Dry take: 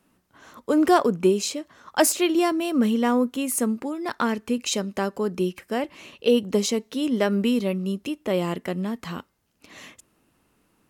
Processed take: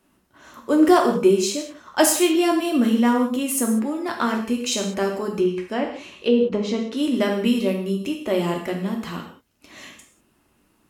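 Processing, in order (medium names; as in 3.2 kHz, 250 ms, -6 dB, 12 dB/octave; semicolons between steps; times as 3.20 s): 5.37–6.97 s: low-pass that closes with the level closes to 730 Hz, closed at -14.5 dBFS; gated-style reverb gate 220 ms falling, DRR 1 dB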